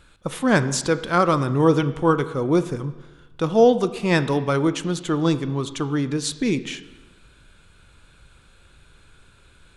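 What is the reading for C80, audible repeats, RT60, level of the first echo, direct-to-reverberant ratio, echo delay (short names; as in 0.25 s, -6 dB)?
15.5 dB, none, 1.2 s, none, 12.0 dB, none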